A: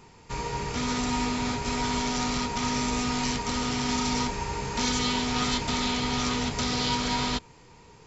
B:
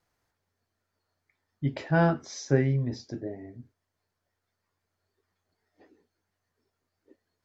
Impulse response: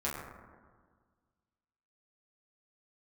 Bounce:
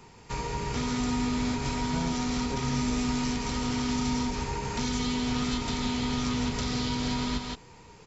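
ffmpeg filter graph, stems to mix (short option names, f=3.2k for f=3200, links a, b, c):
-filter_complex "[0:a]volume=0.5dB,asplit=2[a][b];[b]volume=-7dB[c];[1:a]volume=-11dB[d];[c]aecho=0:1:166:1[e];[a][d][e]amix=inputs=3:normalize=0,acrossover=split=290[f][g];[g]acompressor=threshold=-32dB:ratio=6[h];[f][h]amix=inputs=2:normalize=0"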